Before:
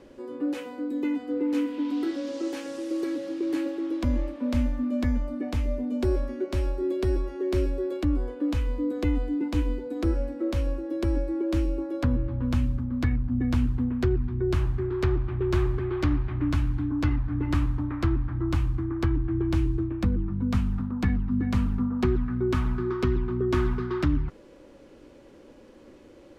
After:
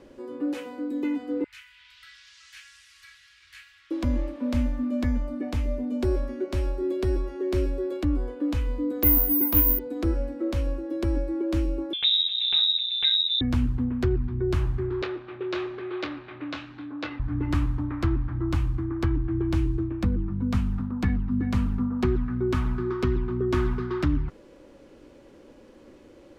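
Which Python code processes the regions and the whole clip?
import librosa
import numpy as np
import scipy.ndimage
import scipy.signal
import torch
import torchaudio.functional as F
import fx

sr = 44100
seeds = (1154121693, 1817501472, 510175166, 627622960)

y = fx.chain(x, sr, fx.cheby2_bandstop(low_hz=200.0, high_hz=660.0, order=4, stop_db=60),
    fx.high_shelf(hz=4200.0, db=-7.5), at=(1.44, 3.91))
y = fx.chain(y, sr, fx.peak_eq(hz=1100.0, db=5.5, octaves=0.67),
    fx.resample_bad(factor=3, down='filtered', up='zero_stuff'), at=(9.03, 9.79))
y = fx.chain(y, sr, fx.clip_hard(threshold_db=-16.5),
    fx.freq_invert(carrier_hz=3800), at=(11.93, 13.41))
y = fx.chain(y, sr, fx.cabinet(low_hz=430.0, low_slope=12, high_hz=5400.0, hz=(540.0, 960.0, 2600.0, 3800.0), db=(6, -5, 4, 6)),
    fx.doubler(ms=25.0, db=-8.5), at=(15.02, 17.2))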